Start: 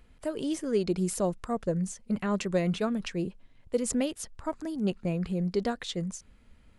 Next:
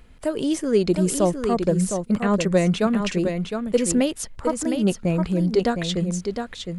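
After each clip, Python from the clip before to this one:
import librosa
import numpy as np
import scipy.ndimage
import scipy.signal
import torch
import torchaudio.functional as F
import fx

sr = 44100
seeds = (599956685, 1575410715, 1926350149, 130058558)

y = x + 10.0 ** (-6.5 / 20.0) * np.pad(x, (int(711 * sr / 1000.0), 0))[:len(x)]
y = F.gain(torch.from_numpy(y), 8.0).numpy()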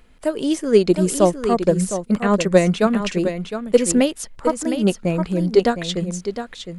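y = fx.peak_eq(x, sr, hz=77.0, db=-8.0, octaves=1.9)
y = fx.upward_expand(y, sr, threshold_db=-29.0, expansion=1.5)
y = F.gain(torch.from_numpy(y), 7.0).numpy()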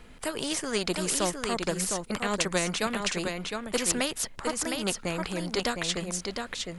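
y = fx.wow_flutter(x, sr, seeds[0], rate_hz=2.1, depth_cents=19.0)
y = fx.spectral_comp(y, sr, ratio=2.0)
y = F.gain(torch.from_numpy(y), -7.5).numpy()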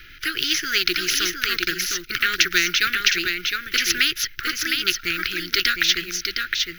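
y = fx.block_float(x, sr, bits=5)
y = fx.curve_eq(y, sr, hz=(130.0, 210.0, 350.0, 570.0, 970.0, 1400.0, 2600.0, 6100.0, 8600.0, 12000.0), db=(0, -16, 2, -28, -28, 12, 11, 9, -28, 12))
y = F.gain(torch.from_numpy(y), 2.5).numpy()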